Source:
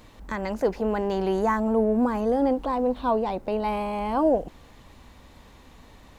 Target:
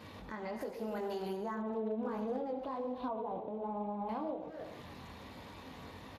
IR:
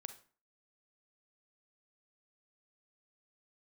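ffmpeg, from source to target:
-filter_complex "[0:a]asplit=2[a][b];[b]adelay=260,highpass=300,lowpass=3.4k,asoftclip=type=hard:threshold=-20.5dB,volume=-16dB[c];[a][c]amix=inputs=2:normalize=0,flanger=delay=19:depth=4.2:speed=1.3,asplit=3[d][e][f];[d]afade=t=out:st=0.61:d=0.02[g];[e]aemphasis=mode=production:type=75fm,afade=t=in:st=0.61:d=0.02,afade=t=out:st=1.36:d=0.02[h];[f]afade=t=in:st=1.36:d=0.02[i];[g][h][i]amix=inputs=3:normalize=0,acompressor=threshold=-41dB:ratio=4[j];[1:a]atrim=start_sample=2205,asetrate=25137,aresample=44100[k];[j][k]afir=irnorm=-1:irlink=0,asettb=1/sr,asplit=3[l][m][n];[l]atrim=end=1.864[o];[m]atrim=start=1.86:end=2.37,asetpts=PTS-STARTPTS,afade=t=in:d=0.004:c=qsin,afade=t=out:st=0.506:d=0.004:c=qsin,asoftclip=type=hard:threshold=-34.5dB[p];[n]atrim=start=2.366[q];[o][p]acrossfade=d=0.004:c1=hsin:c2=qsin[r];[r][q]acrossfade=d=0.004:c1=qsin:c2=hsin,asettb=1/sr,asplit=3[s][t][u];[s]atrim=end=3.084[v];[t]atrim=start=3.08:end=4.09,asetpts=PTS-STARTPTS,afade=t=in:d=0.004:c=qsin,afade=t=out:st=1.006:d=0.004:c=qsin,lowpass=f=1.3k:w=0.5412,lowpass=f=1.3k:w=1.3066[w];[u]atrim=start=4.086[x];[v][w]acrossfade=d=0.004:c1=hsin:c2=qsin[y];[y][x]acrossfade=d=0.004:c1=qsin:c2=hsin,alimiter=level_in=12.5dB:limit=-24dB:level=0:latency=1:release=444,volume=-12.5dB,volume=7dB" -ar 32000 -c:a libspeex -b:a 28k

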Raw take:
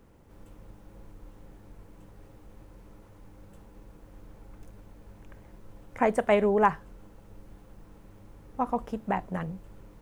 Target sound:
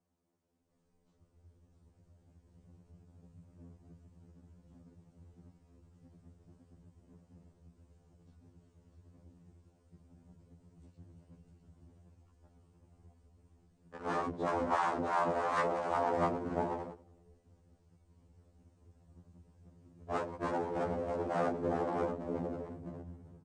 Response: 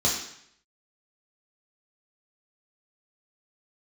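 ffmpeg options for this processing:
-filter_complex "[0:a]aecho=1:1:6.7:0.98,aecho=1:1:279:0.473,asplit=2[a][b];[1:a]atrim=start_sample=2205,adelay=142[c];[b][c]afir=irnorm=-1:irlink=0,volume=-17dB[d];[a][d]amix=inputs=2:normalize=0,dynaudnorm=f=360:g=5:m=5dB,aeval=exprs='0.562*(cos(1*acos(clip(val(0)/0.562,-1,1)))-cos(1*PI/2))+0.1*(cos(4*acos(clip(val(0)/0.562,-1,1)))-cos(4*PI/2))':c=same,afwtdn=0.0251,aeval=exprs='abs(val(0))':c=same,equalizer=f=7.7k:w=0.74:g=-7,afftfilt=real='re*lt(hypot(re,im),0.2)':imag='im*lt(hypot(re,im),0.2)':win_size=1024:overlap=0.75,highpass=f=490:p=1,asetrate=18846,aresample=44100,afftfilt=real='re*2*eq(mod(b,4),0)':imag='im*2*eq(mod(b,4),0)':win_size=2048:overlap=0.75"

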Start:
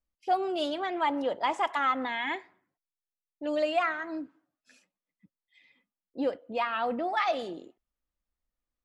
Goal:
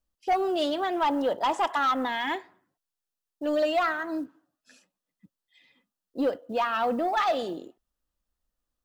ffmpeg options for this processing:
-af "acrusher=bits=9:mode=log:mix=0:aa=0.000001,equalizer=f=2.2k:t=o:w=0.3:g=-9.5,aeval=exprs='0.158*sin(PI/2*1.58*val(0)/0.158)':c=same,volume=-3dB"

